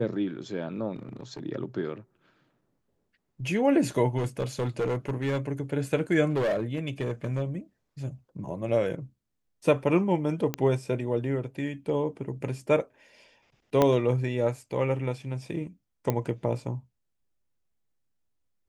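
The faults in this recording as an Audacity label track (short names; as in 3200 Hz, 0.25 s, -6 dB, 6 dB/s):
0.960000	1.400000	clipped -33.5 dBFS
4.170000	5.380000	clipped -23.5 dBFS
6.290000	7.420000	clipped -23 dBFS
10.540000	10.540000	pop -13 dBFS
13.820000	13.820000	pop -9 dBFS
16.100000	16.100000	pop -13 dBFS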